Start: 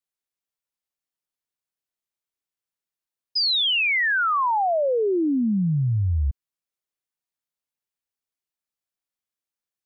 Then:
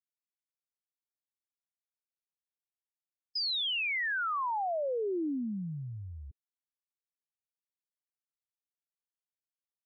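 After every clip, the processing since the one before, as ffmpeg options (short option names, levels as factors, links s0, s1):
-af "afftfilt=real='re*gte(hypot(re,im),0.00447)':imag='im*gte(hypot(re,im),0.00447)':win_size=1024:overlap=0.75,highpass=f=1000:p=1,alimiter=level_in=1.78:limit=0.0631:level=0:latency=1,volume=0.562"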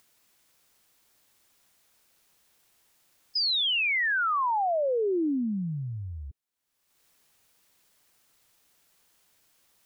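-af "acompressor=mode=upward:threshold=0.00251:ratio=2.5,volume=2"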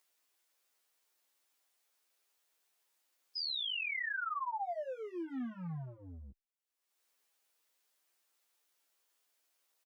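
-filter_complex "[0:a]acrossover=split=280|550|2100[s0][s1][s2][s3];[s0]acrusher=bits=5:mix=0:aa=0.5[s4];[s1]asoftclip=type=hard:threshold=0.0133[s5];[s4][s5][s2][s3]amix=inputs=4:normalize=0,asplit=2[s6][s7];[s7]adelay=11.4,afreqshift=-1[s8];[s6][s8]amix=inputs=2:normalize=1,volume=0.376"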